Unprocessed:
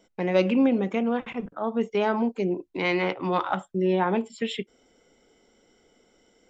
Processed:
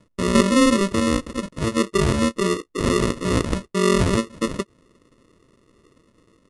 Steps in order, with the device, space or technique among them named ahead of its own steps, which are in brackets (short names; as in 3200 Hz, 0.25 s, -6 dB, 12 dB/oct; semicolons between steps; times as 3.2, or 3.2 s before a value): crushed at another speed (playback speed 2×; sample-and-hold 28×; playback speed 0.5×); gain +5 dB